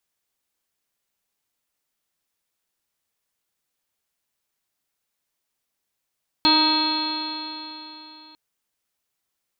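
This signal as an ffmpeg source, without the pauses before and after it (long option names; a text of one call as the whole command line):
ffmpeg -f lavfi -i "aevalsrc='0.0944*pow(10,-3*t/3.48)*sin(2*PI*308.32*t)+0.0188*pow(10,-3*t/3.48)*sin(2*PI*618.58*t)+0.1*pow(10,-3*t/3.48)*sin(2*PI*932.69*t)+0.0422*pow(10,-3*t/3.48)*sin(2*PI*1252.53*t)+0.0266*pow(10,-3*t/3.48)*sin(2*PI*1579.91*t)+0.0112*pow(10,-3*t/3.48)*sin(2*PI*1916.58*t)+0.0178*pow(10,-3*t/3.48)*sin(2*PI*2264.21*t)+0.0398*pow(10,-3*t/3.48)*sin(2*PI*2624.36*t)+0.0119*pow(10,-3*t/3.48)*sin(2*PI*2998.5*t)+0.0562*pow(10,-3*t/3.48)*sin(2*PI*3388*t)+0.0282*pow(10,-3*t/3.48)*sin(2*PI*3794.11*t)+0.168*pow(10,-3*t/3.48)*sin(2*PI*4217.98*t)':duration=1.9:sample_rate=44100" out.wav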